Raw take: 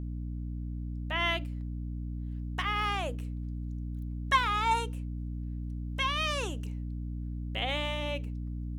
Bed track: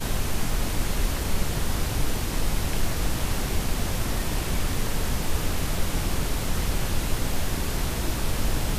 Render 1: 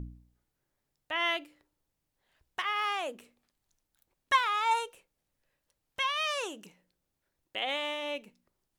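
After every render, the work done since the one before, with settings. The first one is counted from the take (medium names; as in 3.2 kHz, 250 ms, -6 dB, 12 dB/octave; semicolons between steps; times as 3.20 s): de-hum 60 Hz, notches 5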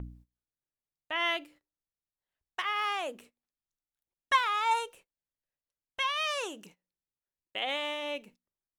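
gate -55 dBFS, range -19 dB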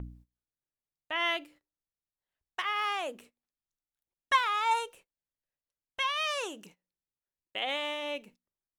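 no audible change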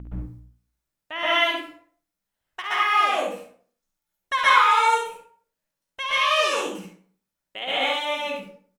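on a send: early reflections 53 ms -8.5 dB, 69 ms -7 dB; on the sum: plate-style reverb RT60 0.51 s, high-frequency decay 0.65×, pre-delay 110 ms, DRR -9 dB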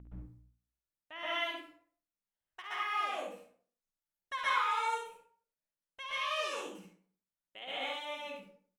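trim -14.5 dB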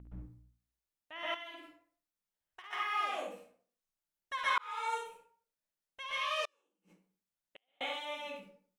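1.34–2.73 s: compression 3:1, threshold -47 dBFS; 4.58–4.98 s: fade in linear; 6.45–7.81 s: inverted gate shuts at -40 dBFS, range -39 dB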